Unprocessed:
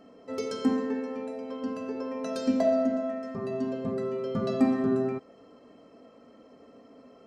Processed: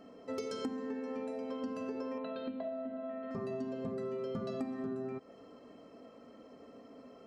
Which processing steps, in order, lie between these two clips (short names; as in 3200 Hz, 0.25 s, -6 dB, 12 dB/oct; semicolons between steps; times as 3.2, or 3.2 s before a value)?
compressor 10:1, threshold -34 dBFS, peak gain reduction 17 dB; 2.18–3.31 rippled Chebyshev low-pass 4100 Hz, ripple 3 dB; gain -1 dB